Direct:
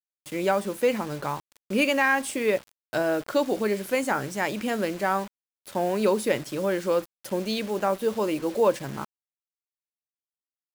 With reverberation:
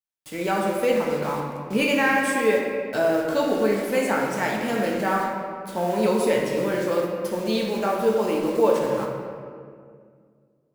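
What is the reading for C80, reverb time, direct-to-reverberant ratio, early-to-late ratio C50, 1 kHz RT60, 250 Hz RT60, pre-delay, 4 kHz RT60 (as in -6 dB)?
3.0 dB, 2.1 s, -2.5 dB, 1.0 dB, 1.8 s, 2.6 s, 4 ms, 1.2 s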